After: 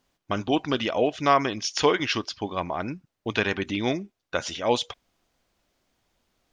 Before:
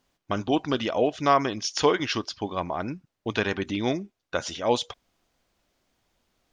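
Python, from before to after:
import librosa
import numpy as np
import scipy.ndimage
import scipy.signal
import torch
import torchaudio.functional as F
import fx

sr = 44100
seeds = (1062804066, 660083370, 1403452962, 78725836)

y = fx.dynamic_eq(x, sr, hz=2400.0, q=1.4, threshold_db=-44.0, ratio=4.0, max_db=4)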